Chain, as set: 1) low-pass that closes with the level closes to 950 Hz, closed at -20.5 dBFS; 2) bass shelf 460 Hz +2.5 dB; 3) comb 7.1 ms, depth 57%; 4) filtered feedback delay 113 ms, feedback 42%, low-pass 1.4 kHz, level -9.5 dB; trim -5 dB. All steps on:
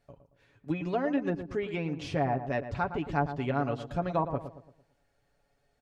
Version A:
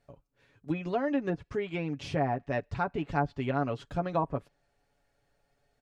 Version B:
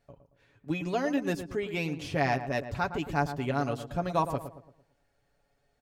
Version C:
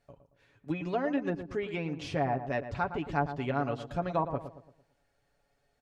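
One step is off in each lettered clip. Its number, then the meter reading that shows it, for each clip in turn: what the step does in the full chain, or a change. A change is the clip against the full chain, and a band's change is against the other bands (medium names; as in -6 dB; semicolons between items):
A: 4, echo-to-direct -12.0 dB to none; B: 1, 4 kHz band +5.0 dB; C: 2, 125 Hz band -1.5 dB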